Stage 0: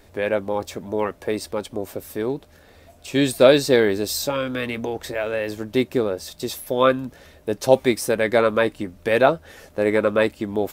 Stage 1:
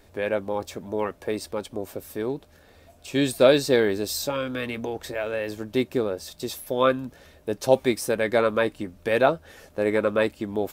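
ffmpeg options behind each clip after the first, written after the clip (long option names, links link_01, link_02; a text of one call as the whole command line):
ffmpeg -i in.wav -af "bandreject=frequency=2000:width=27,volume=-3.5dB" out.wav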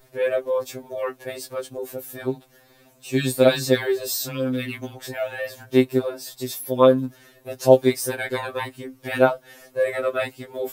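ffmpeg -i in.wav -af "highshelf=frequency=11000:gain=11,afftfilt=real='re*2.45*eq(mod(b,6),0)':imag='im*2.45*eq(mod(b,6),0)':win_size=2048:overlap=0.75,volume=2.5dB" out.wav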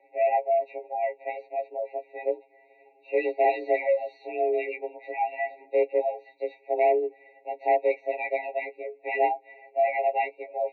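ffmpeg -i in.wav -af "asoftclip=type=hard:threshold=-17.5dB,highpass=frequency=180:width_type=q:width=0.5412,highpass=frequency=180:width_type=q:width=1.307,lowpass=frequency=2500:width_type=q:width=0.5176,lowpass=frequency=2500:width_type=q:width=0.7071,lowpass=frequency=2500:width_type=q:width=1.932,afreqshift=160,afftfilt=real='re*eq(mod(floor(b*sr/1024/930),2),0)':imag='im*eq(mod(floor(b*sr/1024/930),2),0)':win_size=1024:overlap=0.75" out.wav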